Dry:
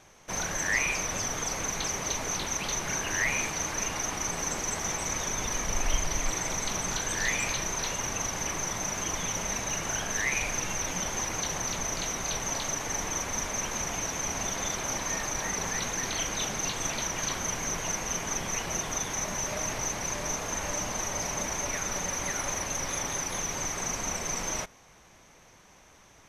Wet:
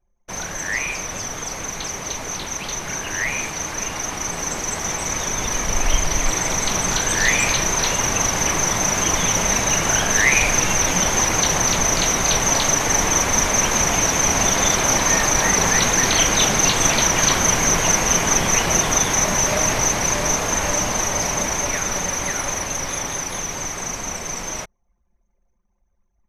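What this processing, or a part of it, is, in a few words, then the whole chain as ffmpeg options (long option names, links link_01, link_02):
voice memo with heavy noise removal: -af "anlmdn=0.0398,dynaudnorm=framelen=590:gausssize=21:maxgain=12.5dB,volume=3dB"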